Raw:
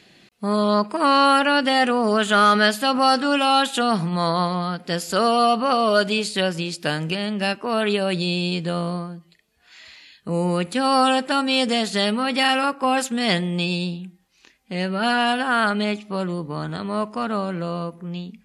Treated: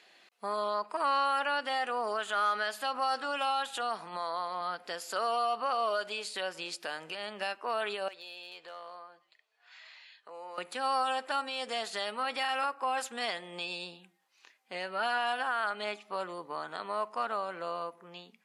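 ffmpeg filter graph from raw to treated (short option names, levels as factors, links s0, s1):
-filter_complex "[0:a]asettb=1/sr,asplit=3[s0][s1][s2];[s0]atrim=end=3.554[s3];[s1]atrim=start=3.55:end=4.61,asetpts=PTS-STARTPTS,afade=t=in:d=0.004:c=qsin,afade=t=out:st=1.056:d=0.004:c=qsin,highpass=140,aeval=exprs='val(0)+0.0126*(sin(2*PI*50*n/s)+sin(2*PI*2*50*n/s)/2+sin(2*PI*3*50*n/s)/3+sin(2*PI*4*50*n/s)/4+sin(2*PI*5*50*n/s)/5)':c=same[s4];[s2]atrim=start=4.606[s5];[s3][s4]acrossfade=d=0.004:c1=hsin:c2=qsin[s6];[s6][s5]acrossfade=d=0.004:c1=qsin:c2=hsin,asettb=1/sr,asplit=3[s7][s8][s9];[s7]atrim=end=8.084[s10];[s8]atrim=start=8.08:end=10.58,asetpts=PTS-STARTPTS,afade=t=in:d=0.004:c=qsin,afade=t=out:st=2.496:d=0.004:c=qsin,acrossover=split=410 6100:gain=0.158 1 0.2[s11][s12][s13];[s11][s12][s13]amix=inputs=3:normalize=0,acompressor=threshold=0.00708:ratio=2:attack=3.2:release=140:knee=1:detection=peak,asoftclip=type=hard:threshold=0.0282[s14];[s9]atrim=start=10.576[s15];[s10][s14]acrossfade=d=0.004:c1=hsin:c2=qsin[s16];[s16][s15]acrossfade=d=0.004:c1=qsin:c2=hsin,alimiter=limit=0.141:level=0:latency=1:release=285,highpass=530,equalizer=f=980:w=0.62:g=6,volume=0.376"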